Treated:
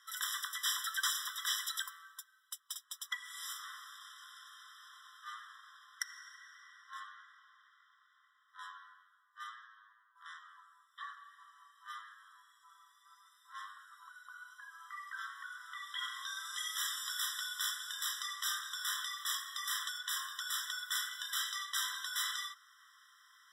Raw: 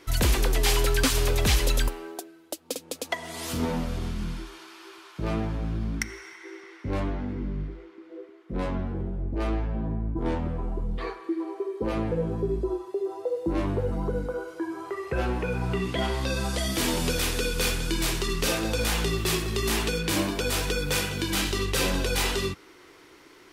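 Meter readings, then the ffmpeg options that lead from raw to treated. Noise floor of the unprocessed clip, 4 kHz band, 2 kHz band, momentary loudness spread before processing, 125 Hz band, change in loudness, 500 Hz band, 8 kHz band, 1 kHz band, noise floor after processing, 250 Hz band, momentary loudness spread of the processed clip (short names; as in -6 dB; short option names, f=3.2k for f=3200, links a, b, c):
-52 dBFS, -7.0 dB, -8.5 dB, 14 LU, under -40 dB, -10.5 dB, under -40 dB, -8.0 dB, -10.5 dB, -71 dBFS, under -40 dB, 19 LU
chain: -af "lowshelf=f=740:t=q:w=1.5:g=7,afftfilt=real='re*eq(mod(floor(b*sr/1024/1000),2),1)':imag='im*eq(mod(floor(b*sr/1024/1000),2),1)':win_size=1024:overlap=0.75,volume=-4.5dB"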